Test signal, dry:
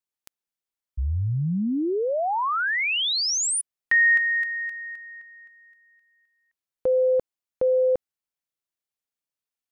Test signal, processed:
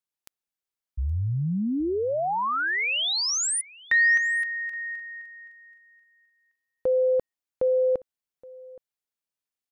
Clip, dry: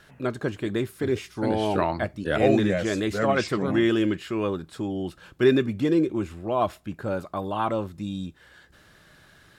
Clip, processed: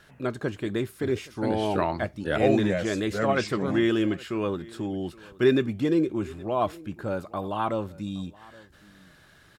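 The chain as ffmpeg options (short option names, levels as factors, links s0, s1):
-af "aecho=1:1:821:0.075,volume=0.841"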